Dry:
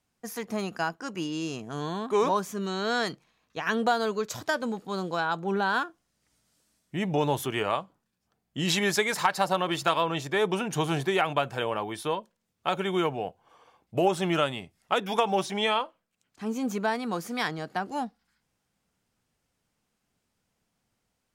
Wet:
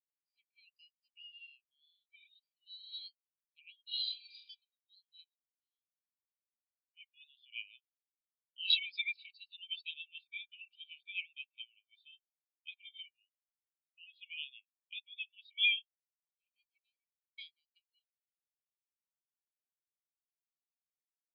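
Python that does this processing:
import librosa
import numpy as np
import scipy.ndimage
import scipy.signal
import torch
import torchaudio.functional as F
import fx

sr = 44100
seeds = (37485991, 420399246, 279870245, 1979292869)

y = fx.reverb_throw(x, sr, start_s=3.86, length_s=0.51, rt60_s=1.3, drr_db=-8.5)
y = fx.level_steps(y, sr, step_db=21, at=(5.24, 6.97))
y = fx.studio_fade_out(y, sr, start_s=16.54, length_s=0.84)
y = scipy.signal.sosfilt(scipy.signal.cheby1(4, 1.0, [2300.0, 4900.0], 'bandpass', fs=sr, output='sos'), y)
y = fx.spectral_expand(y, sr, expansion=2.5)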